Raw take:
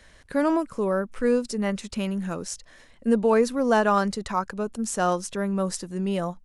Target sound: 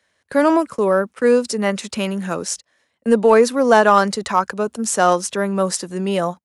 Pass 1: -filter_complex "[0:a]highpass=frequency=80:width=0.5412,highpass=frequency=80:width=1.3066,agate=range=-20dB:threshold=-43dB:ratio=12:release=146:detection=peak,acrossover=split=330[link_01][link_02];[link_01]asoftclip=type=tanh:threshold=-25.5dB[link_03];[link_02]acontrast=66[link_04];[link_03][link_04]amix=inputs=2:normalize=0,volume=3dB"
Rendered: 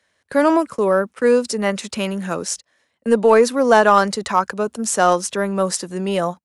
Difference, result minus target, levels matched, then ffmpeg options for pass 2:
soft clipping: distortion +12 dB
-filter_complex "[0:a]highpass=frequency=80:width=0.5412,highpass=frequency=80:width=1.3066,agate=range=-20dB:threshold=-43dB:ratio=12:release=146:detection=peak,acrossover=split=330[link_01][link_02];[link_01]asoftclip=type=tanh:threshold=-17dB[link_03];[link_02]acontrast=66[link_04];[link_03][link_04]amix=inputs=2:normalize=0,volume=3dB"

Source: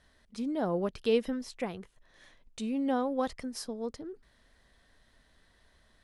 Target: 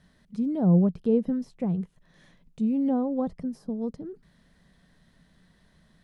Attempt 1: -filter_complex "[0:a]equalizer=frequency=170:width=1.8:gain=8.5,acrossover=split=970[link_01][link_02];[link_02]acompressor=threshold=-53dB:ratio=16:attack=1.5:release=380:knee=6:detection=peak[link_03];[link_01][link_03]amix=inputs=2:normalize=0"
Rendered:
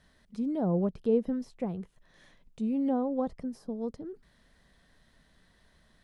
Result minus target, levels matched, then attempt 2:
125 Hz band −5.0 dB
-filter_complex "[0:a]equalizer=frequency=170:width=1.8:gain=19.5,acrossover=split=970[link_01][link_02];[link_02]acompressor=threshold=-53dB:ratio=16:attack=1.5:release=380:knee=6:detection=peak[link_03];[link_01][link_03]amix=inputs=2:normalize=0"

